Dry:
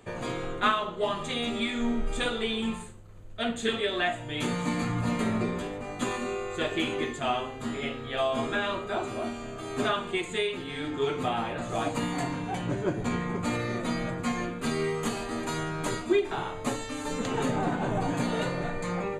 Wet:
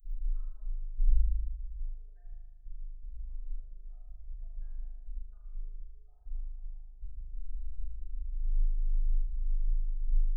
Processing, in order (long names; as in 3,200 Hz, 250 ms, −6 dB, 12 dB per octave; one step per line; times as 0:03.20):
each half-wave held at its own peak
gate on every frequency bin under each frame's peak −10 dB strong
inverse Chebyshev band-stop filter 110–8,800 Hz, stop band 70 dB
low-shelf EQ 440 Hz −6.5 dB
in parallel at −1.5 dB: compressor whose output falls as the input rises −54 dBFS, ratio −1
on the sum: time stretch by overlap-add 0.54×, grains 46 ms
flutter between parallel walls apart 6.6 metres, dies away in 1.3 s
level +10.5 dB